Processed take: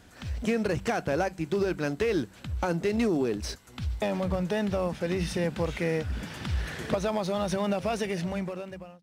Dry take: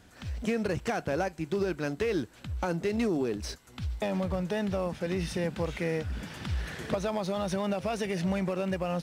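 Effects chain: fade out at the end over 1.08 s; de-hum 95.29 Hz, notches 2; trim +2.5 dB

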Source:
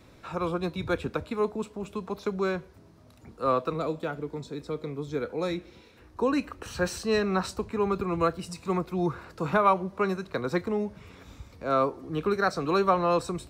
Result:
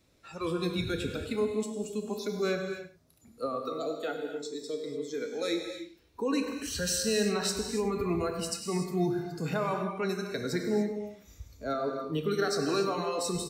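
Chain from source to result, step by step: peak limiter -21.5 dBFS, peak gain reduction 11 dB; 3.65–5.49 s: high-pass 260 Hz 6 dB/octave; spectral noise reduction 14 dB; FFT filter 650 Hz 0 dB, 1 kHz -4 dB, 6.1 kHz +8 dB; echo from a far wall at 17 m, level -14 dB; gated-style reverb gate 320 ms flat, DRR 4 dB

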